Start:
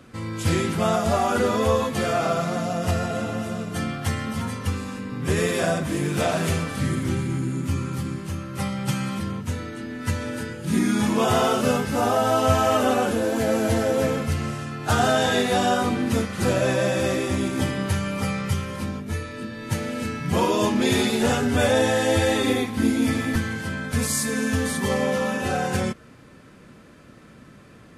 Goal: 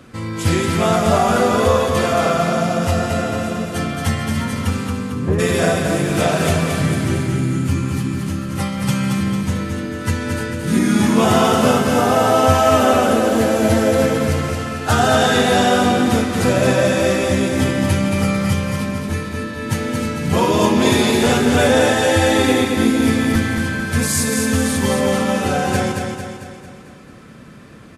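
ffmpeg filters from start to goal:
ffmpeg -i in.wav -filter_complex "[0:a]asplit=3[link_01][link_02][link_03];[link_01]afade=type=out:start_time=4.9:duration=0.02[link_04];[link_02]lowpass=1000,afade=type=in:start_time=4.9:duration=0.02,afade=type=out:start_time=5.38:duration=0.02[link_05];[link_03]afade=type=in:start_time=5.38:duration=0.02[link_06];[link_04][link_05][link_06]amix=inputs=3:normalize=0,asplit=2[link_07][link_08];[link_08]aecho=0:1:224|448|672|896|1120|1344|1568:0.562|0.292|0.152|0.0791|0.0411|0.0214|0.0111[link_09];[link_07][link_09]amix=inputs=2:normalize=0,volume=5dB" out.wav

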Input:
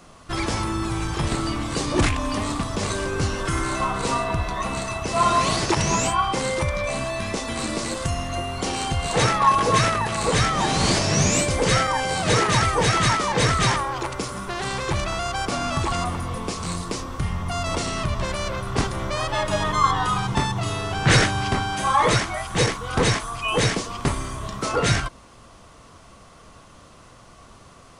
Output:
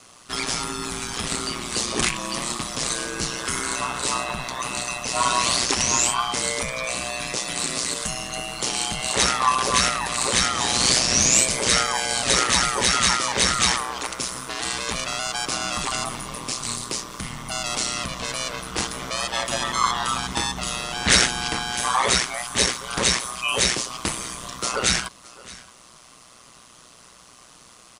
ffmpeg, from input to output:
ffmpeg -i in.wav -af "highpass=100,highshelf=frequency=7200:gain=-7.5,aecho=1:1:620:0.0944,aeval=exprs='val(0)*sin(2*PI*61*n/s)':channel_layout=same,crystalizer=i=7:c=0,volume=-3.5dB" out.wav

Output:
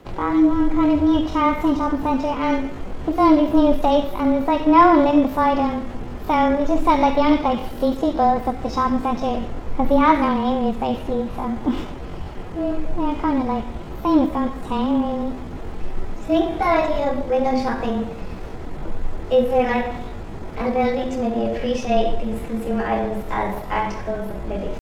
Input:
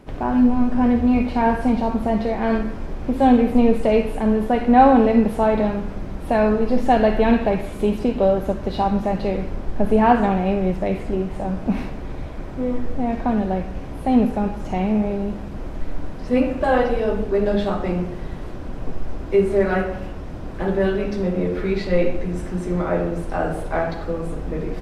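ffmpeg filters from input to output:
ffmpeg -i in.wav -af "asetrate=58866,aresample=44100,atempo=0.749154,afreqshift=-19" out.wav

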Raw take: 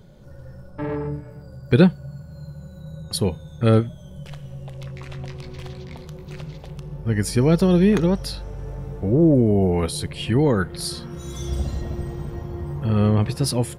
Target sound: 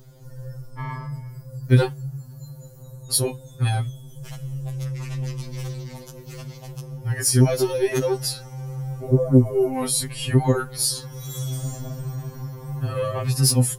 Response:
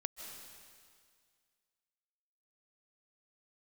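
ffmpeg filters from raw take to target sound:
-af "aexciter=amount=3.8:drive=3.6:freq=5200,acontrast=34,afftfilt=real='re*2.45*eq(mod(b,6),0)':imag='im*2.45*eq(mod(b,6),0)':win_size=2048:overlap=0.75,volume=-3.5dB"

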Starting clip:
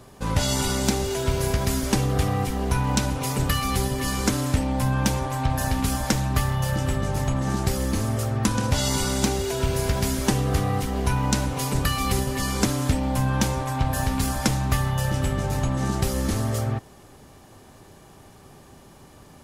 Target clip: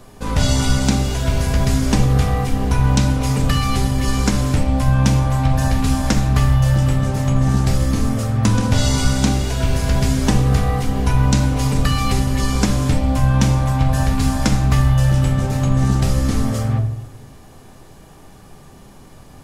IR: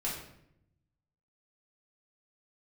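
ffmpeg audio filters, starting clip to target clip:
-filter_complex "[0:a]acrossover=split=9000[link_01][link_02];[link_02]acompressor=threshold=-46dB:ratio=4:attack=1:release=60[link_03];[link_01][link_03]amix=inputs=2:normalize=0,asplit=2[link_04][link_05];[1:a]atrim=start_sample=2205,asetrate=41895,aresample=44100,lowshelf=frequency=70:gain=9[link_06];[link_05][link_06]afir=irnorm=-1:irlink=0,volume=-6dB[link_07];[link_04][link_07]amix=inputs=2:normalize=0"

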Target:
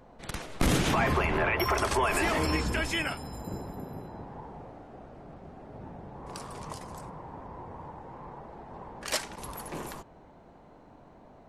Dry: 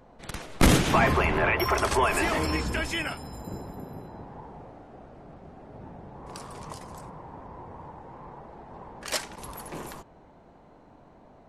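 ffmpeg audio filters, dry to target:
ffmpeg -i in.wav -af "alimiter=limit=-16.5dB:level=0:latency=1:release=116" out.wav

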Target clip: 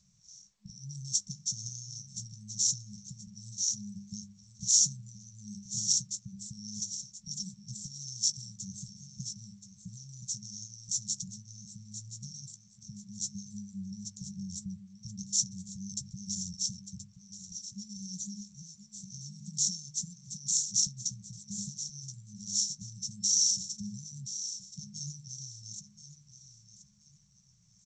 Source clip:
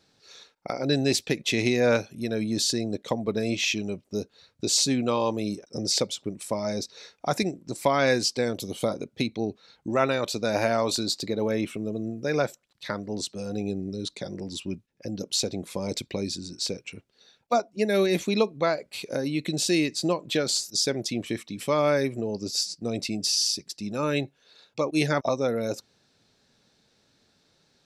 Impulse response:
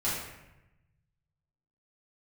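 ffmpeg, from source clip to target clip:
-filter_complex "[0:a]bandreject=frequency=50:width_type=h:width=6,bandreject=frequency=100:width_type=h:width=6,bandreject=frequency=150:width_type=h:width=6,bandreject=frequency=200:width_type=h:width=6,bandreject=frequency=250:width_type=h:width=6,aeval=exprs='val(0)+0.00316*sin(2*PI*3500*n/s)':channel_layout=same,acrossover=split=3200[link_01][link_02];[link_01]acompressor=threshold=-38dB:ratio=12[link_03];[link_03][link_02]amix=inputs=2:normalize=0,afftfilt=real='re*(1-between(b*sr/4096,210,5400))':imag='im*(1-between(b*sr/4096,210,5400))':win_size=4096:overlap=0.75,asplit=2[link_04][link_05];[link_05]adelay=15,volume=-11dB[link_06];[link_04][link_06]amix=inputs=2:normalize=0,aecho=1:1:1026|2052|3078:0.251|0.0728|0.0211,volume=4dB" -ar 16000 -c:a g722

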